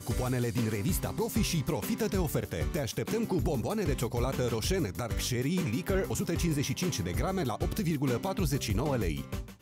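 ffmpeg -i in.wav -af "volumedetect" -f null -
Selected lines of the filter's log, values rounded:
mean_volume: -30.5 dB
max_volume: -17.7 dB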